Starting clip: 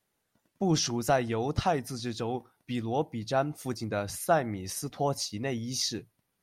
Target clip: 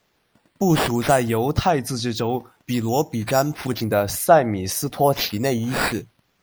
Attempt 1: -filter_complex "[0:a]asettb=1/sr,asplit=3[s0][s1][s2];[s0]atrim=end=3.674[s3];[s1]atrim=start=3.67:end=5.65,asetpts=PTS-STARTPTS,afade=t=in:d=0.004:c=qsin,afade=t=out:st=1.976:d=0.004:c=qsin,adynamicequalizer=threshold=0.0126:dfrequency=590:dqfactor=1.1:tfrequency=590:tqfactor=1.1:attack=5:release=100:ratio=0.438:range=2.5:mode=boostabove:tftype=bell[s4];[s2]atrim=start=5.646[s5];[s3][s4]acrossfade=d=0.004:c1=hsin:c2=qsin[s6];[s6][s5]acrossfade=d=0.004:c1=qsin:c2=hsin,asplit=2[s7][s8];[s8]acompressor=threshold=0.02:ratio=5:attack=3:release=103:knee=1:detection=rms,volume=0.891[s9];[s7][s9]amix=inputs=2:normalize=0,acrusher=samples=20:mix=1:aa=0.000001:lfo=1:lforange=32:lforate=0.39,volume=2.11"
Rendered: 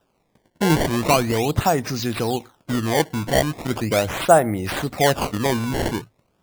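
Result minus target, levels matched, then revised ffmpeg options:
decimation with a swept rate: distortion +8 dB
-filter_complex "[0:a]asettb=1/sr,asplit=3[s0][s1][s2];[s0]atrim=end=3.674[s3];[s1]atrim=start=3.67:end=5.65,asetpts=PTS-STARTPTS,afade=t=in:d=0.004:c=qsin,afade=t=out:st=1.976:d=0.004:c=qsin,adynamicequalizer=threshold=0.0126:dfrequency=590:dqfactor=1.1:tfrequency=590:tqfactor=1.1:attack=5:release=100:ratio=0.438:range=2.5:mode=boostabove:tftype=bell[s4];[s2]atrim=start=5.646[s5];[s3][s4]acrossfade=d=0.004:c1=hsin:c2=qsin[s6];[s6][s5]acrossfade=d=0.004:c1=qsin:c2=hsin,asplit=2[s7][s8];[s8]acompressor=threshold=0.02:ratio=5:attack=3:release=103:knee=1:detection=rms,volume=0.891[s9];[s7][s9]amix=inputs=2:normalize=0,acrusher=samples=4:mix=1:aa=0.000001:lfo=1:lforange=6.4:lforate=0.39,volume=2.11"

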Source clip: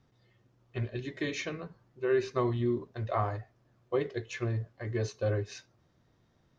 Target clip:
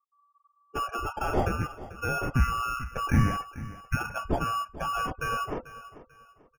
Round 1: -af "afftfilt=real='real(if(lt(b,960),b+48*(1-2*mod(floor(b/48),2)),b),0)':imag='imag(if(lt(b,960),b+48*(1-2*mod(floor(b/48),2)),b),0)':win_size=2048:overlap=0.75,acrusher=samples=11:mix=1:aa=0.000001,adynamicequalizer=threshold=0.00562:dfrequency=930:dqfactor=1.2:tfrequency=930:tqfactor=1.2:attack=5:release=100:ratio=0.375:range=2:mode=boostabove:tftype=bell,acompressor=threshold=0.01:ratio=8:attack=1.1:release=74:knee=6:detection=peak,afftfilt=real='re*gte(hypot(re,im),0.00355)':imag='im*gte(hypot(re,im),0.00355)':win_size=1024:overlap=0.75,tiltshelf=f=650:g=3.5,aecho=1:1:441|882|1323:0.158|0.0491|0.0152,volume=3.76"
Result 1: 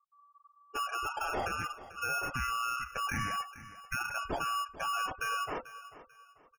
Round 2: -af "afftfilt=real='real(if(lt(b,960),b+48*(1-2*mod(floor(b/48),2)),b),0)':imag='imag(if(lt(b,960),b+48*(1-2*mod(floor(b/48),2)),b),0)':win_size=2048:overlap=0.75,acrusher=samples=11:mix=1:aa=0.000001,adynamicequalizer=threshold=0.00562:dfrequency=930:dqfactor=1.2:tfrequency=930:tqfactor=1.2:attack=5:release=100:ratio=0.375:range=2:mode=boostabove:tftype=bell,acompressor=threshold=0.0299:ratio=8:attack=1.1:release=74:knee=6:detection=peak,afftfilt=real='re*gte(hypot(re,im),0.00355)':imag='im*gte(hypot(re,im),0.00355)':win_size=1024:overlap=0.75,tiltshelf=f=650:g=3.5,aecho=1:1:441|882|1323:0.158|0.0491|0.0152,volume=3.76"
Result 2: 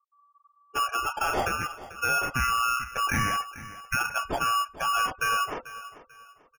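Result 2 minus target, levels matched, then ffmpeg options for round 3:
500 Hz band -4.5 dB
-af "afftfilt=real='real(if(lt(b,960),b+48*(1-2*mod(floor(b/48),2)),b),0)':imag='imag(if(lt(b,960),b+48*(1-2*mod(floor(b/48),2)),b),0)':win_size=2048:overlap=0.75,acrusher=samples=11:mix=1:aa=0.000001,adynamicequalizer=threshold=0.00562:dfrequency=930:dqfactor=1.2:tfrequency=930:tqfactor=1.2:attack=5:release=100:ratio=0.375:range=2:mode=boostabove:tftype=bell,acompressor=threshold=0.0299:ratio=8:attack=1.1:release=74:knee=6:detection=peak,afftfilt=real='re*gte(hypot(re,im),0.00355)':imag='im*gte(hypot(re,im),0.00355)':win_size=1024:overlap=0.75,tiltshelf=f=650:g=13.5,aecho=1:1:441|882|1323:0.158|0.0491|0.0152,volume=3.76"

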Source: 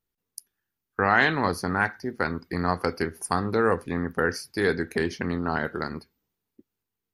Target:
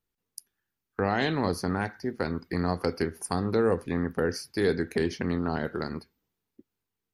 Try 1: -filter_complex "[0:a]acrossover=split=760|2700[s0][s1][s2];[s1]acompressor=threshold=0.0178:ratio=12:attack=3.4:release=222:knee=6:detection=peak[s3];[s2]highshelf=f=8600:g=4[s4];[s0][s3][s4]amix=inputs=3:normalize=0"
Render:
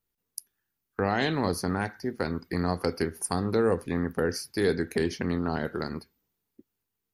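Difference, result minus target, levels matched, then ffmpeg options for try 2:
8 kHz band +4.0 dB
-filter_complex "[0:a]acrossover=split=760|2700[s0][s1][s2];[s1]acompressor=threshold=0.0178:ratio=12:attack=3.4:release=222:knee=6:detection=peak[s3];[s2]highshelf=f=8600:g=-4[s4];[s0][s3][s4]amix=inputs=3:normalize=0"

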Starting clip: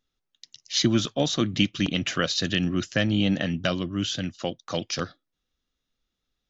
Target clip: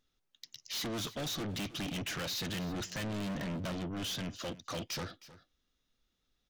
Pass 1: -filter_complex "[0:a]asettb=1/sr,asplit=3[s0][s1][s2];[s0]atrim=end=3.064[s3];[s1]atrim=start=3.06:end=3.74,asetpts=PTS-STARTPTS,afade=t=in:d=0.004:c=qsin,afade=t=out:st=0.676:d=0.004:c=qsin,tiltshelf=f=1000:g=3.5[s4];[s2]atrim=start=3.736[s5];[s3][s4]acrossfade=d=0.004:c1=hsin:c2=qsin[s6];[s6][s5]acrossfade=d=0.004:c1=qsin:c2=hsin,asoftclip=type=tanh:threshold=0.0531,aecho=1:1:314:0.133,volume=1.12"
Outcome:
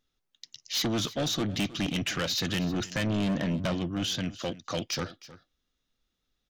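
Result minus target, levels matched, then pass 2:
saturation: distortion -5 dB
-filter_complex "[0:a]asettb=1/sr,asplit=3[s0][s1][s2];[s0]atrim=end=3.064[s3];[s1]atrim=start=3.06:end=3.74,asetpts=PTS-STARTPTS,afade=t=in:d=0.004:c=qsin,afade=t=out:st=0.676:d=0.004:c=qsin,tiltshelf=f=1000:g=3.5[s4];[s2]atrim=start=3.736[s5];[s3][s4]acrossfade=d=0.004:c1=hsin:c2=qsin[s6];[s6][s5]acrossfade=d=0.004:c1=qsin:c2=hsin,asoftclip=type=tanh:threshold=0.015,aecho=1:1:314:0.133,volume=1.12"

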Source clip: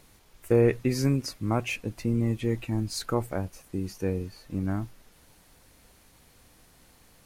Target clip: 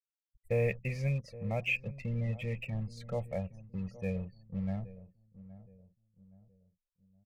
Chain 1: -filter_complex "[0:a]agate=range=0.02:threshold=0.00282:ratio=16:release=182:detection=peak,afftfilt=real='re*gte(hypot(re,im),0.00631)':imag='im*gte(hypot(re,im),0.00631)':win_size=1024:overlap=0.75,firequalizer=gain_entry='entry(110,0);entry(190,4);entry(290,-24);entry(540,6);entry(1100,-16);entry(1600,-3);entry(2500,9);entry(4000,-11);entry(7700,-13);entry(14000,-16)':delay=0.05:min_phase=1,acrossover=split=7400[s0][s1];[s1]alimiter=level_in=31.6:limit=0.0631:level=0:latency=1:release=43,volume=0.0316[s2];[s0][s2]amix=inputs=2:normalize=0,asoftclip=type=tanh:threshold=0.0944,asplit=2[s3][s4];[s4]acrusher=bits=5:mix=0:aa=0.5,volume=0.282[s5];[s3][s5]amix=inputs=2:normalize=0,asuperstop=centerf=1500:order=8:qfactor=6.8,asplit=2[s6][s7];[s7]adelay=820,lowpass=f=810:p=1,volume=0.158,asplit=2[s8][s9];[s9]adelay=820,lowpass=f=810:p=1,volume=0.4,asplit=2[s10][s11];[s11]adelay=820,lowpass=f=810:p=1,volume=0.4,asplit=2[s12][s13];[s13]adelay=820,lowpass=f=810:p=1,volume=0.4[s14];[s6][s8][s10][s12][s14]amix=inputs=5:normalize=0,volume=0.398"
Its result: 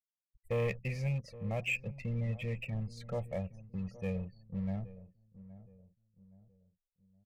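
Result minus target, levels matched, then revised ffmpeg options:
saturation: distortion +19 dB
-filter_complex "[0:a]agate=range=0.02:threshold=0.00282:ratio=16:release=182:detection=peak,afftfilt=real='re*gte(hypot(re,im),0.00631)':imag='im*gte(hypot(re,im),0.00631)':win_size=1024:overlap=0.75,firequalizer=gain_entry='entry(110,0);entry(190,4);entry(290,-24);entry(540,6);entry(1100,-16);entry(1600,-3);entry(2500,9);entry(4000,-11);entry(7700,-13);entry(14000,-16)':delay=0.05:min_phase=1,acrossover=split=7400[s0][s1];[s1]alimiter=level_in=31.6:limit=0.0631:level=0:latency=1:release=43,volume=0.0316[s2];[s0][s2]amix=inputs=2:normalize=0,asoftclip=type=tanh:threshold=0.355,asplit=2[s3][s4];[s4]acrusher=bits=5:mix=0:aa=0.5,volume=0.282[s5];[s3][s5]amix=inputs=2:normalize=0,asuperstop=centerf=1500:order=8:qfactor=6.8,asplit=2[s6][s7];[s7]adelay=820,lowpass=f=810:p=1,volume=0.158,asplit=2[s8][s9];[s9]adelay=820,lowpass=f=810:p=1,volume=0.4,asplit=2[s10][s11];[s11]adelay=820,lowpass=f=810:p=1,volume=0.4,asplit=2[s12][s13];[s13]adelay=820,lowpass=f=810:p=1,volume=0.4[s14];[s6][s8][s10][s12][s14]amix=inputs=5:normalize=0,volume=0.398"

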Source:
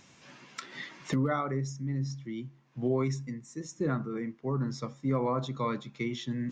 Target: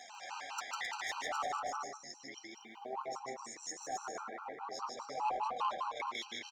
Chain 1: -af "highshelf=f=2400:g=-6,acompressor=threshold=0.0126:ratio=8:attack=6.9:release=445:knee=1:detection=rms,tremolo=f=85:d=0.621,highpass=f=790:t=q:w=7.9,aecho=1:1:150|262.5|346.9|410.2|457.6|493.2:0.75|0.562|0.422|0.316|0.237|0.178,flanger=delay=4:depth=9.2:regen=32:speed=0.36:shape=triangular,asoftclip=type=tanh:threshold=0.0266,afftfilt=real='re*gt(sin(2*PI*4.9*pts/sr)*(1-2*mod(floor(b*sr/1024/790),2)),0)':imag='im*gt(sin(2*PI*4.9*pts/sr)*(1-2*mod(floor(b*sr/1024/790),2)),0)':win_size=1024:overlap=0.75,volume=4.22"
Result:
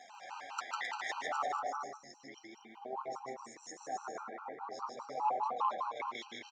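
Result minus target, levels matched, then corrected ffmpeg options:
saturation: distortion -13 dB; 4 kHz band -5.0 dB
-af "highshelf=f=2400:g=3,acompressor=threshold=0.0126:ratio=8:attack=6.9:release=445:knee=1:detection=rms,tremolo=f=85:d=0.621,highpass=f=790:t=q:w=7.9,aecho=1:1:150|262.5|346.9|410.2|457.6|493.2:0.75|0.562|0.422|0.316|0.237|0.178,flanger=delay=4:depth=9.2:regen=32:speed=0.36:shape=triangular,asoftclip=type=tanh:threshold=0.00944,afftfilt=real='re*gt(sin(2*PI*4.9*pts/sr)*(1-2*mod(floor(b*sr/1024/790),2)),0)':imag='im*gt(sin(2*PI*4.9*pts/sr)*(1-2*mod(floor(b*sr/1024/790),2)),0)':win_size=1024:overlap=0.75,volume=4.22"

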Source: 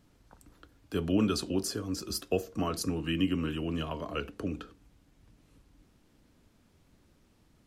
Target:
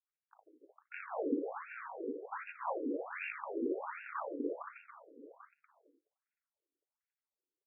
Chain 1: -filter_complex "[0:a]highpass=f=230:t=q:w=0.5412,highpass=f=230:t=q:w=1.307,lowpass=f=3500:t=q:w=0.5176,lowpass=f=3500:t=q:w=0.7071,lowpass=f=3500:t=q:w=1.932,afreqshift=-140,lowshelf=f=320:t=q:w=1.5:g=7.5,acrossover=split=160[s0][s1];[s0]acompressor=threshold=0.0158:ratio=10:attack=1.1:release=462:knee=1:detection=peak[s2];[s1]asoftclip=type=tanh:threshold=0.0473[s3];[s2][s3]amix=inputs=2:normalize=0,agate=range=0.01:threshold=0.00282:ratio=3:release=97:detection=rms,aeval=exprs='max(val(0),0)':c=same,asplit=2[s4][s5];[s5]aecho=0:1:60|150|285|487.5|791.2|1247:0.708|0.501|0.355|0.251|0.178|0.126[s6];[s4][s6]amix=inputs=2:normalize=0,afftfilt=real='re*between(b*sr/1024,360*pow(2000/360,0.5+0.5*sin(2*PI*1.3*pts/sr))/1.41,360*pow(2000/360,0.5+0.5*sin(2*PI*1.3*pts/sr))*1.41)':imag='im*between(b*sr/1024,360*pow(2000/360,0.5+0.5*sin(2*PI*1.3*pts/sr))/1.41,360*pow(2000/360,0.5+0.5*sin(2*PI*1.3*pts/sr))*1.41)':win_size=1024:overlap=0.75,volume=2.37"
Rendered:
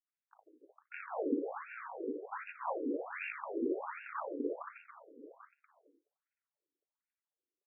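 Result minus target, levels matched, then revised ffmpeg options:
compression: peak gain reduction -10 dB
-filter_complex "[0:a]highpass=f=230:t=q:w=0.5412,highpass=f=230:t=q:w=1.307,lowpass=f=3500:t=q:w=0.5176,lowpass=f=3500:t=q:w=0.7071,lowpass=f=3500:t=q:w=1.932,afreqshift=-140,lowshelf=f=320:t=q:w=1.5:g=7.5,acrossover=split=160[s0][s1];[s0]acompressor=threshold=0.00447:ratio=10:attack=1.1:release=462:knee=1:detection=peak[s2];[s1]asoftclip=type=tanh:threshold=0.0473[s3];[s2][s3]amix=inputs=2:normalize=0,agate=range=0.01:threshold=0.00282:ratio=3:release=97:detection=rms,aeval=exprs='max(val(0),0)':c=same,asplit=2[s4][s5];[s5]aecho=0:1:60|150|285|487.5|791.2|1247:0.708|0.501|0.355|0.251|0.178|0.126[s6];[s4][s6]amix=inputs=2:normalize=0,afftfilt=real='re*between(b*sr/1024,360*pow(2000/360,0.5+0.5*sin(2*PI*1.3*pts/sr))/1.41,360*pow(2000/360,0.5+0.5*sin(2*PI*1.3*pts/sr))*1.41)':imag='im*between(b*sr/1024,360*pow(2000/360,0.5+0.5*sin(2*PI*1.3*pts/sr))/1.41,360*pow(2000/360,0.5+0.5*sin(2*PI*1.3*pts/sr))*1.41)':win_size=1024:overlap=0.75,volume=2.37"

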